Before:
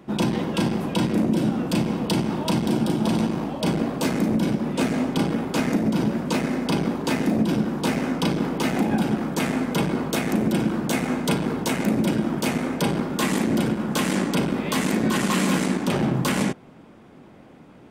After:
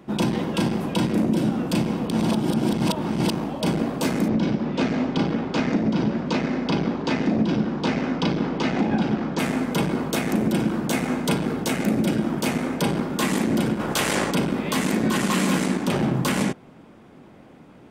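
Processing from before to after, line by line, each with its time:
2.10–3.30 s: reverse
4.28–9.39 s: low-pass 5.6 kHz 24 dB/octave
11.42–12.19 s: band-stop 980 Hz, Q 8.9
13.79–14.30 s: spectral peaks clipped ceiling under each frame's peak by 13 dB

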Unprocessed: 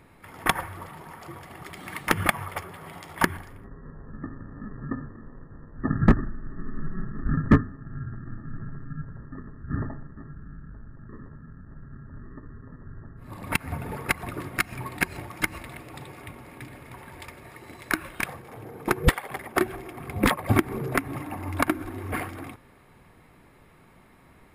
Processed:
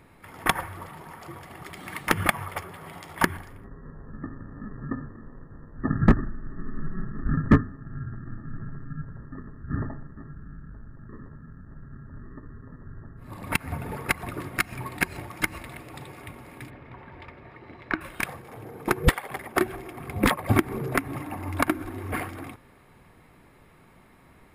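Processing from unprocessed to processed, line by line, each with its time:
16.70–18.01 s: distance through air 300 m

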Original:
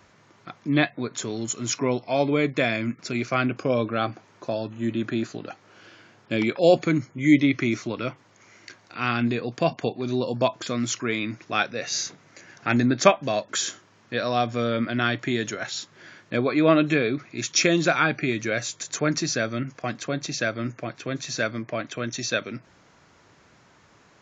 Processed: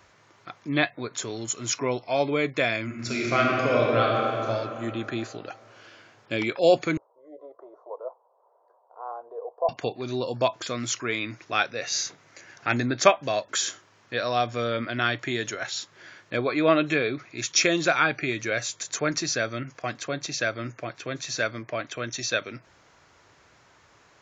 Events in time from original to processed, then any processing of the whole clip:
2.85–4.47 s: reverb throw, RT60 2.9 s, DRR -3 dB
6.97–9.69 s: elliptic band-pass 460–1000 Hz, stop band 50 dB
whole clip: peaking EQ 200 Hz -8.5 dB 1.3 oct

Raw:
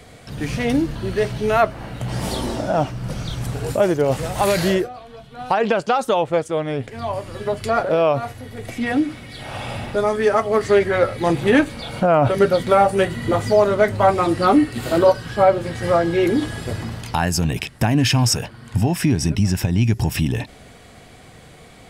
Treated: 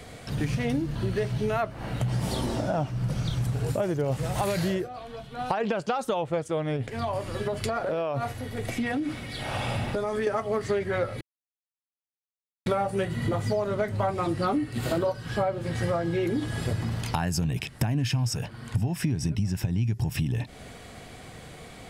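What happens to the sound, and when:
6.76–10.27 s: compression, threshold -22 dBFS
11.21–12.66 s: mute
whole clip: dynamic bell 130 Hz, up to +8 dB, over -34 dBFS, Q 1.3; compression 5:1, threshold -25 dBFS

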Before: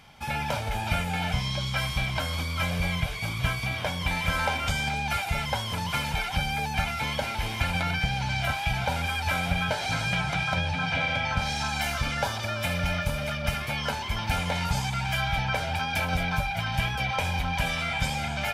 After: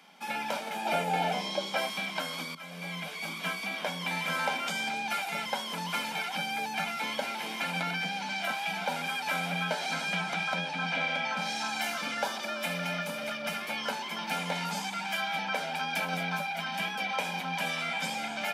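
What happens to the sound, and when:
0.85–1.90 s: high-order bell 510 Hz +9.5 dB
2.55–3.19 s: fade in, from -17 dB
whole clip: steep high-pass 170 Hz 96 dB/octave; trim -3 dB

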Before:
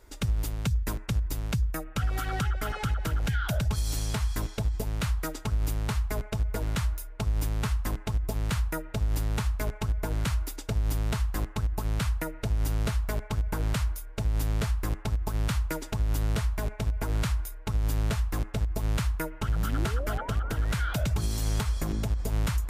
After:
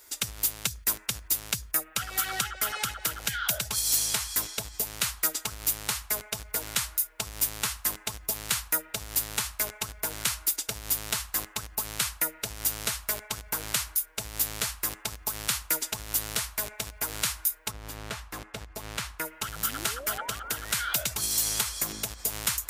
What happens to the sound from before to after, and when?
17.70–19.24 s: low-pass 1.3 kHz -> 3.1 kHz 6 dB/octave
whole clip: tilt EQ +4.5 dB/octave

